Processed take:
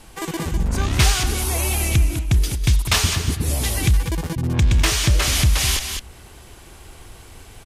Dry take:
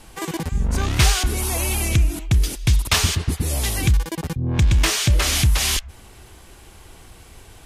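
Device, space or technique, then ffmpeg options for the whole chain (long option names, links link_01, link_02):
ducked delay: -filter_complex "[0:a]asplit=3[link_01][link_02][link_03];[link_02]adelay=202,volume=-2dB[link_04];[link_03]apad=whole_len=346301[link_05];[link_04][link_05]sidechaincompress=threshold=-22dB:ratio=8:attack=27:release=874[link_06];[link_01][link_06]amix=inputs=2:normalize=0"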